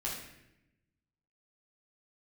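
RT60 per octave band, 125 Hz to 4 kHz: 1.5, 1.3, 0.95, 0.75, 0.90, 0.70 s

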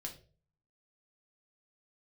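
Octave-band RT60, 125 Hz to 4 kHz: 0.75, 0.50, 0.50, 0.30, 0.30, 0.30 s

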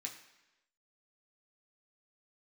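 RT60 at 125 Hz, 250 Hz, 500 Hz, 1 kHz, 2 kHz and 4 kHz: 0.85, 0.95, 1.0, 1.0, 1.0, 1.0 s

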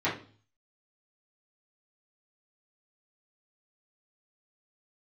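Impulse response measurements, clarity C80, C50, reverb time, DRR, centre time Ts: 14.0 dB, 8.0 dB, 0.40 s, -10.5 dB, 28 ms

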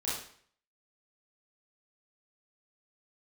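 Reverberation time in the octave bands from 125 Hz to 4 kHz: 0.60, 0.55, 0.55, 0.55, 0.55, 0.50 s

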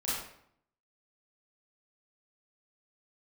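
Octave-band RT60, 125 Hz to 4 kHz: 0.80, 0.75, 0.70, 0.70, 0.60, 0.50 s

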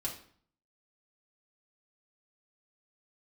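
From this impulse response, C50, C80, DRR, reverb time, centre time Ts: 7.5 dB, 12.5 dB, -4.0 dB, 0.55 s, 22 ms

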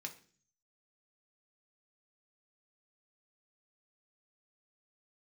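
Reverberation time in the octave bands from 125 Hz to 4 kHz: 0.80, 0.65, 0.50, 0.40, 0.45, 0.50 s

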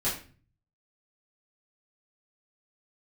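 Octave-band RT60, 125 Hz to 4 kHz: 0.90, 0.60, 0.40, 0.35, 0.40, 0.35 s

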